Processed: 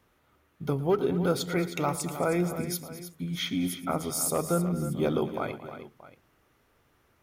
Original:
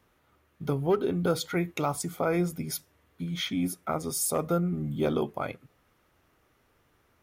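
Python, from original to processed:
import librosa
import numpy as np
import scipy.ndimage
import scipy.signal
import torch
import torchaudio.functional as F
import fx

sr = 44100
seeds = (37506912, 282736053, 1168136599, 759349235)

y = fx.echo_multitap(x, sr, ms=(113, 223, 313, 628), db=(-17.0, -15.5, -11.5, -18.5))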